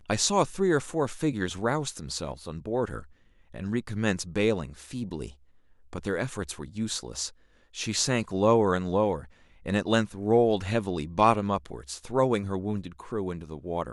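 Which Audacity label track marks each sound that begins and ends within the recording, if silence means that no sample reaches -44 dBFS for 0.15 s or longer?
3.540000	5.320000	sound
5.930000	7.300000	sound
7.740000	9.270000	sound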